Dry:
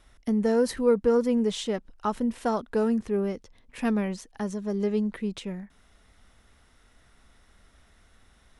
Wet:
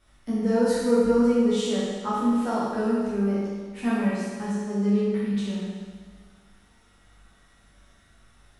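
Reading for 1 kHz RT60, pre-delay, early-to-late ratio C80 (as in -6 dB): 1.6 s, 9 ms, 0.0 dB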